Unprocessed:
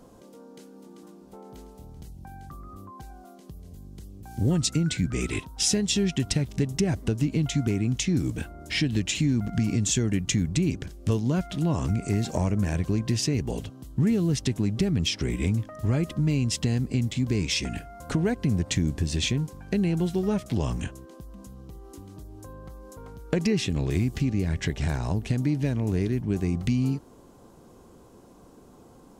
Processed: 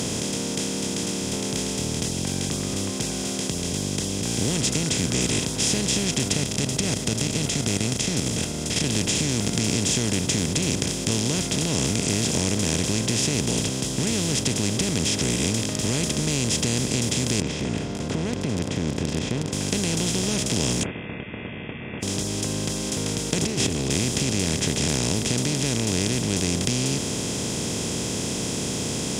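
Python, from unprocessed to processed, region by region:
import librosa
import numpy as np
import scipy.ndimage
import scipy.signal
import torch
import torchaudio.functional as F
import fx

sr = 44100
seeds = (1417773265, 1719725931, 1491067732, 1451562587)

y = fx.chain(x, sr, fx.level_steps(step_db=13),
    fx.comb(ms=1.5, depth=0.47), at=(6.35, 8.84))
y = fx.chain(y, sr, fx.lowpass(hz=1300.0, slope=24),
    fx.low_shelf(hz=130.0, db=-3.0),
    fx.level_steps(step_db=9), at=(17.4, 19.53))
y = fx.chain(y, sr, fx.highpass(hz=900.0, slope=24),
    fx.freq_invert(carrier_hz=3100), at=(20.83, 22.03))
y = fx.chain(y, sr, fx.tilt_shelf(db=9.0, hz=1400.0),
    fx.comb(ms=2.7, depth=0.76),
    fx.over_compress(threshold_db=-29.0, ratio=-1.0), at=(23.42, 23.9))
y = fx.bin_compress(y, sr, power=0.2)
y = scipy.signal.sosfilt(scipy.signal.butter(2, 57.0, 'highpass', fs=sr, output='sos'), y)
y = fx.high_shelf(y, sr, hz=6200.0, db=8.0)
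y = y * 10.0 ** (-8.0 / 20.0)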